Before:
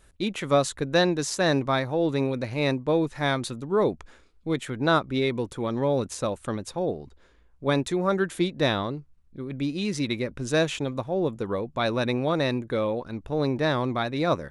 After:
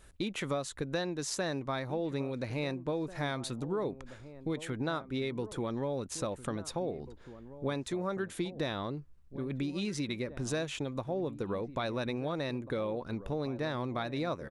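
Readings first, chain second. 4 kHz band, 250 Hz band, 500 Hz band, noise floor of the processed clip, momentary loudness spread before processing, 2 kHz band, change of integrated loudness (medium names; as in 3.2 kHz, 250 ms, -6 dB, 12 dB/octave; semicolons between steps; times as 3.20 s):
-9.5 dB, -8.5 dB, -10.0 dB, -52 dBFS, 7 LU, -10.5 dB, -9.5 dB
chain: compression 5:1, threshold -32 dBFS, peak gain reduction 14.5 dB; echo from a far wall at 290 m, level -14 dB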